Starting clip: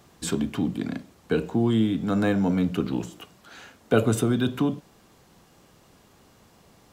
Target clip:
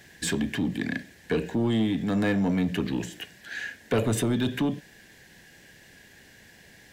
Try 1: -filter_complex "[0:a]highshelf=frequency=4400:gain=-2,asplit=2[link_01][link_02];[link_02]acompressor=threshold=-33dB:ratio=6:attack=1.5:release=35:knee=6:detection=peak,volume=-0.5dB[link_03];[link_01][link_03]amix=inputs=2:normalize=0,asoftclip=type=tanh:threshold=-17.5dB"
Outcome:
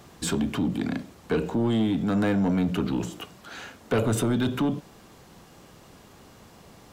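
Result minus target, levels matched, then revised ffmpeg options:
2,000 Hz band −4.5 dB
-filter_complex "[0:a]highshelf=frequency=4400:gain=-2,asplit=2[link_01][link_02];[link_02]acompressor=threshold=-33dB:ratio=6:attack=1.5:release=35:knee=6:detection=peak,highpass=frequency=1700:width_type=q:width=8.7,volume=-0.5dB[link_03];[link_01][link_03]amix=inputs=2:normalize=0,asoftclip=type=tanh:threshold=-17.5dB"

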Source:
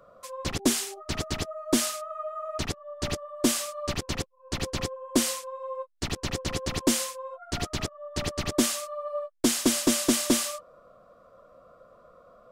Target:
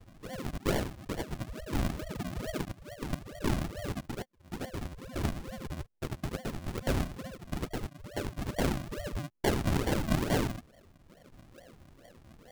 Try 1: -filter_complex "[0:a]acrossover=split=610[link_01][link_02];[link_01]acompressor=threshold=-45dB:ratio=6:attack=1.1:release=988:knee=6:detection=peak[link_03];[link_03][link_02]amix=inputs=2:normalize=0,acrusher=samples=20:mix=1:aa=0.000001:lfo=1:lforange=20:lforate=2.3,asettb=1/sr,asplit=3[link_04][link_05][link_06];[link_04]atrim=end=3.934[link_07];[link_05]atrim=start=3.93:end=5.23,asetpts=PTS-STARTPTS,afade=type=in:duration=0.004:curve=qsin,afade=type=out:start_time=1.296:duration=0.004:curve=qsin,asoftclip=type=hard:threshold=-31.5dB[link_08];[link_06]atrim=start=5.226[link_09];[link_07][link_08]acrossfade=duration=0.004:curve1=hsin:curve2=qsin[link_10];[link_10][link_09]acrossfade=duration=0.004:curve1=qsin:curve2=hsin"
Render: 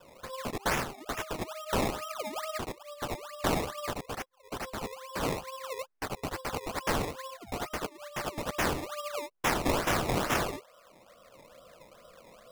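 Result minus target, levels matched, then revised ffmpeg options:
sample-and-hold swept by an LFO: distortion −15 dB
-filter_complex "[0:a]acrossover=split=610[link_01][link_02];[link_01]acompressor=threshold=-45dB:ratio=6:attack=1.1:release=988:knee=6:detection=peak[link_03];[link_03][link_02]amix=inputs=2:normalize=0,acrusher=samples=68:mix=1:aa=0.000001:lfo=1:lforange=68:lforate=2.3,asettb=1/sr,asplit=3[link_04][link_05][link_06];[link_04]atrim=end=3.934[link_07];[link_05]atrim=start=3.93:end=5.23,asetpts=PTS-STARTPTS,afade=type=in:duration=0.004:curve=qsin,afade=type=out:start_time=1.296:duration=0.004:curve=qsin,asoftclip=type=hard:threshold=-31.5dB[link_08];[link_06]atrim=start=5.226[link_09];[link_07][link_08]acrossfade=duration=0.004:curve1=hsin:curve2=qsin[link_10];[link_10][link_09]acrossfade=duration=0.004:curve1=qsin:curve2=hsin"

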